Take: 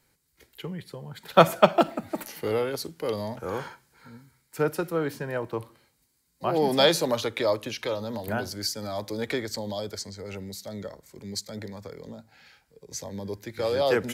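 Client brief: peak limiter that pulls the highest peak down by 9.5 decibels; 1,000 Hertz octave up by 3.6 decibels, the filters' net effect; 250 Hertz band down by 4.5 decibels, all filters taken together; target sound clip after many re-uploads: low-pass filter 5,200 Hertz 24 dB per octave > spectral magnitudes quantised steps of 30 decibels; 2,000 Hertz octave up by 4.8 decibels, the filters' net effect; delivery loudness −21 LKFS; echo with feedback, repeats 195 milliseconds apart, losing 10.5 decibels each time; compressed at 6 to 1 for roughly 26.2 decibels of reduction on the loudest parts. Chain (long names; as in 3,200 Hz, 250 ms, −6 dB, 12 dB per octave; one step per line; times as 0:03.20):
parametric band 250 Hz −7 dB
parametric band 1,000 Hz +4 dB
parametric band 2,000 Hz +5 dB
downward compressor 6 to 1, threshold −38 dBFS
brickwall limiter −32 dBFS
low-pass filter 5,200 Hz 24 dB per octave
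repeating echo 195 ms, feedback 30%, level −10.5 dB
spectral magnitudes quantised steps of 30 dB
level +23.5 dB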